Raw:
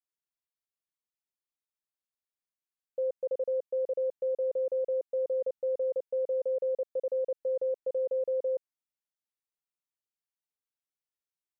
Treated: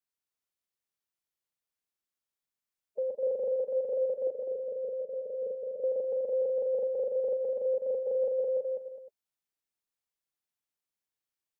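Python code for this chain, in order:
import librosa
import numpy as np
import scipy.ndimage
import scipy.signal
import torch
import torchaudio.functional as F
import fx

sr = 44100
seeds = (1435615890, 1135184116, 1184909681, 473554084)

p1 = fx.spec_quant(x, sr, step_db=30)
p2 = fx.cheby_ripple(p1, sr, hz=620.0, ripple_db=6, at=(4.27, 5.84))
y = p2 + fx.echo_multitap(p2, sr, ms=(41, 204, 246, 314, 412, 513), db=(-9.0, -3.5, -12.5, -13.5, -13.0, -18.5), dry=0)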